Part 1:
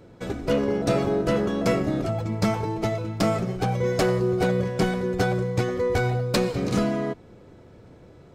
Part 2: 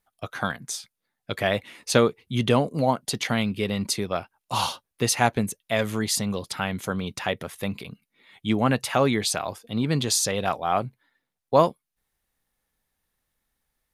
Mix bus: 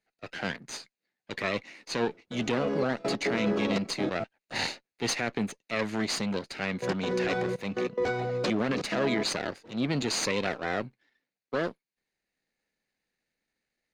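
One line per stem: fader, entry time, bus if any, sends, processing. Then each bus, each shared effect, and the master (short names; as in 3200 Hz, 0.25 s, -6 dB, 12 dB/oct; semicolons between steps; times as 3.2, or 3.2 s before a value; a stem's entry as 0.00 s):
-9.5 dB, 2.10 s, muted 4.24–6.7, no send, limiter -20.5 dBFS, peak gain reduction 6.5 dB; AGC gain up to 10.5 dB; step gate "x.xxxxx.." 143 bpm -24 dB
+1.0 dB, 0.00 s, no send, minimum comb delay 0.46 ms; transient shaper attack -8 dB, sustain -2 dB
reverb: off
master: three-band isolator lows -16 dB, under 180 Hz, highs -23 dB, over 6700 Hz; limiter -18 dBFS, peak gain reduction 11 dB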